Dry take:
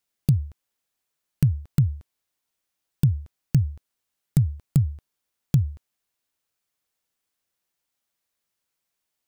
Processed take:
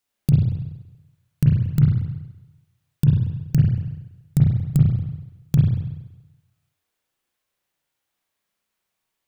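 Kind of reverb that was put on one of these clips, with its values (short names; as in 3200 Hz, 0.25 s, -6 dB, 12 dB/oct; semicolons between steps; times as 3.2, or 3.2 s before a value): spring tank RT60 1 s, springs 33/47 ms, chirp 20 ms, DRR -3.5 dB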